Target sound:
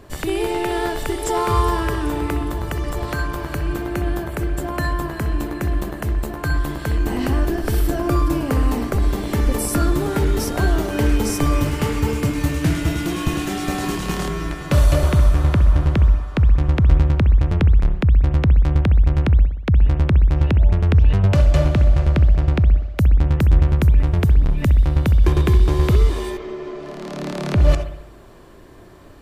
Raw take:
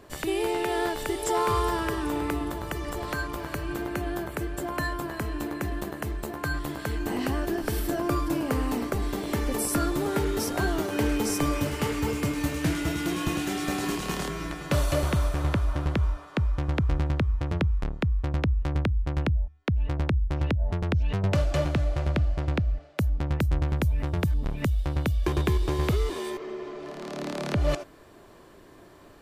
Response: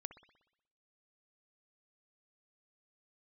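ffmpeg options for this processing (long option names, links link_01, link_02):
-filter_complex "[0:a]lowshelf=frequency=130:gain=9.5[link_01];[1:a]atrim=start_sample=2205[link_02];[link_01][link_02]afir=irnorm=-1:irlink=0,volume=9dB"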